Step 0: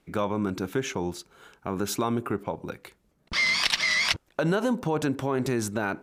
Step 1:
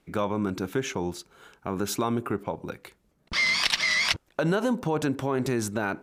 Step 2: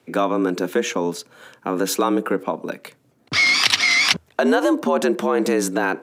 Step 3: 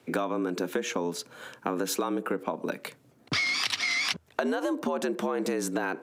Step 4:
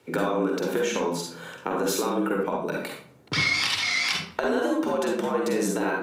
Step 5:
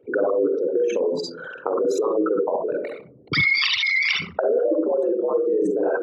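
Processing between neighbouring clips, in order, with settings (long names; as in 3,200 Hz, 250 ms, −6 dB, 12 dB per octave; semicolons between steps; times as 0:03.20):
no processing that can be heard
frequency shifter +80 Hz; level +7.5 dB
downward compressor 6 to 1, threshold −26 dBFS, peak gain reduction 14 dB
convolution reverb RT60 0.55 s, pre-delay 44 ms, DRR −0.5 dB
spectral envelope exaggerated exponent 3; level +4.5 dB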